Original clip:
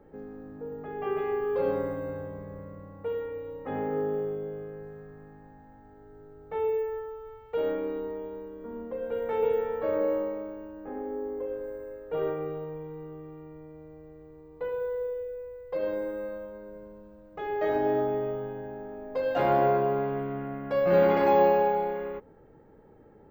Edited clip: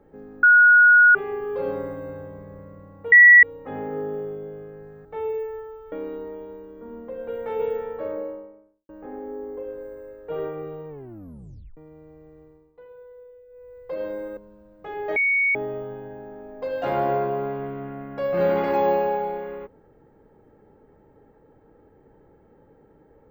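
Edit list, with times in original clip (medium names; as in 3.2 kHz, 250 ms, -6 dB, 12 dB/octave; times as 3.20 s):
0.43–1.15 s: bleep 1.45 kHz -9.5 dBFS
3.12–3.43 s: bleep 1.94 kHz -6.5 dBFS
5.05–6.44 s: delete
7.31–7.75 s: delete
9.54–10.72 s: studio fade out
12.72 s: tape stop 0.88 s
14.25–15.62 s: dip -14 dB, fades 0.31 s
16.20–16.90 s: delete
17.69–18.08 s: bleep 2.23 kHz -17.5 dBFS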